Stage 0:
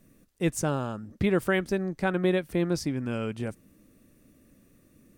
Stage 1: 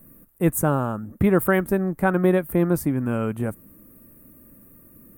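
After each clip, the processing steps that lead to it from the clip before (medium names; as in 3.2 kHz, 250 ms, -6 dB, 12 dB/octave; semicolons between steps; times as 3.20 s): FFT filter 280 Hz 0 dB, 400 Hz -2 dB, 1.2 kHz +2 dB, 5.2 kHz -20 dB, 8 kHz -3 dB, 14 kHz +14 dB; trim +7 dB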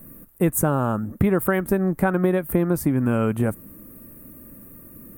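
compression 6:1, threshold -22 dBFS, peak gain reduction 9.5 dB; trim +6 dB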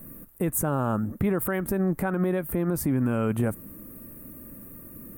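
peak limiter -16.5 dBFS, peak gain reduction 9.5 dB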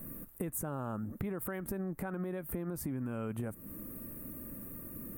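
compression 5:1, threshold -34 dBFS, peak gain reduction 12 dB; trim -1.5 dB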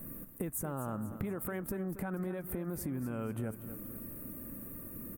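feedback delay 240 ms, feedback 47%, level -12.5 dB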